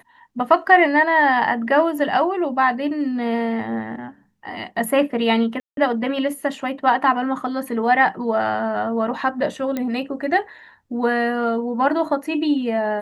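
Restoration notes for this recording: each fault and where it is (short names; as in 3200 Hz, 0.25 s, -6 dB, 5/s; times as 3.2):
5.6–5.77 gap 0.172 s
9.77 pop -12 dBFS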